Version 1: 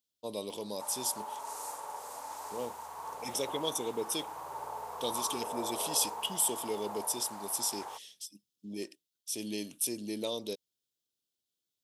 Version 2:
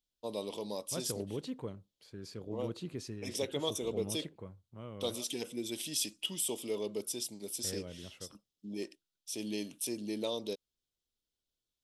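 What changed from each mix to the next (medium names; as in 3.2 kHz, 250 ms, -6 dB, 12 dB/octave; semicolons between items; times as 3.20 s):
second voice: unmuted; background: muted; master: add treble shelf 7.9 kHz -10 dB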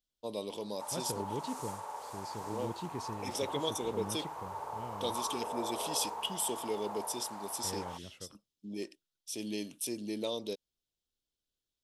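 background: unmuted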